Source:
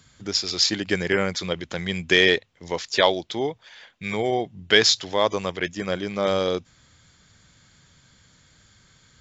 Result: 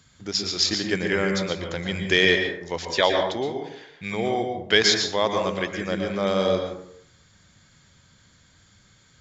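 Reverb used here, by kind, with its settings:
dense smooth reverb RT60 0.68 s, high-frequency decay 0.45×, pre-delay 105 ms, DRR 3.5 dB
level −2 dB

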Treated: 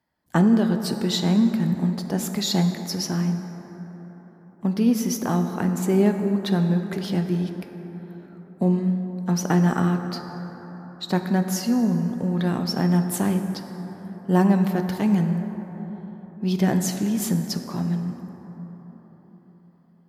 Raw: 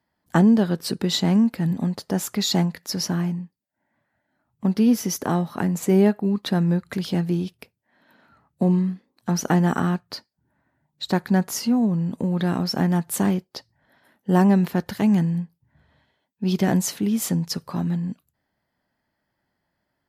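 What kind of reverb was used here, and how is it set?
dense smooth reverb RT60 4.6 s, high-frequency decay 0.35×, DRR 6 dB
level −2 dB

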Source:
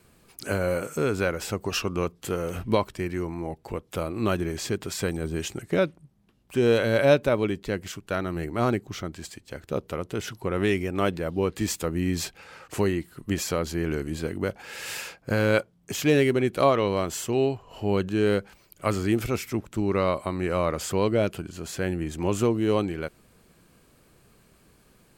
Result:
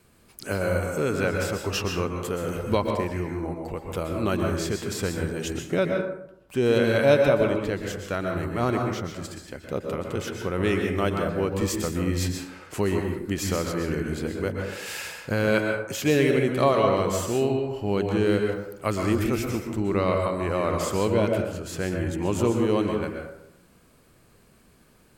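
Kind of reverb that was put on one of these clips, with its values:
dense smooth reverb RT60 0.8 s, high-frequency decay 0.45×, pre-delay 110 ms, DRR 2 dB
level −1 dB

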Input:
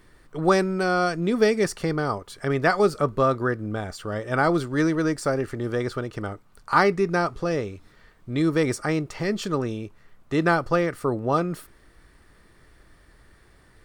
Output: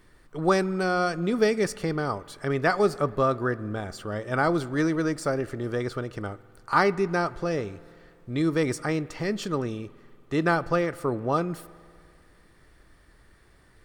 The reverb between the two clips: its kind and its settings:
spring reverb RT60 2.3 s, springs 48 ms, chirp 25 ms, DRR 19 dB
level −2.5 dB

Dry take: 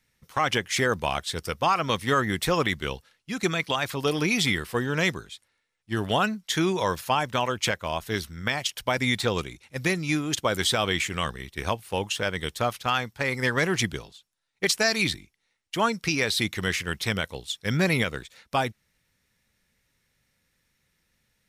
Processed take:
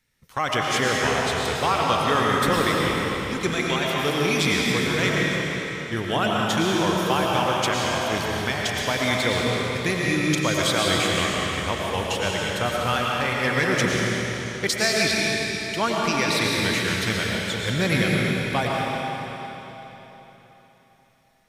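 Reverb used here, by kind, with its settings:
comb and all-pass reverb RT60 3.8 s, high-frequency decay 0.95×, pre-delay 70 ms, DRR −3.5 dB
level −1 dB

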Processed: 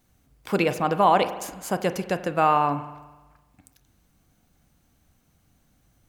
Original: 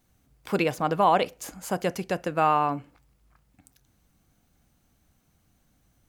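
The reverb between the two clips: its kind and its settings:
spring reverb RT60 1.2 s, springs 41 ms, chirp 30 ms, DRR 11.5 dB
level +2 dB

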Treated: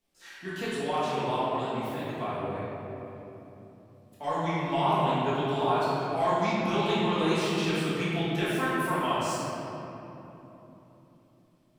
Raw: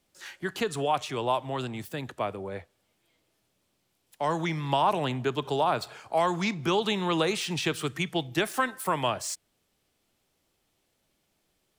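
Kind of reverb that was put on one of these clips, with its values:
rectangular room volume 190 cubic metres, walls hard, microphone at 1.6 metres
level −11.5 dB

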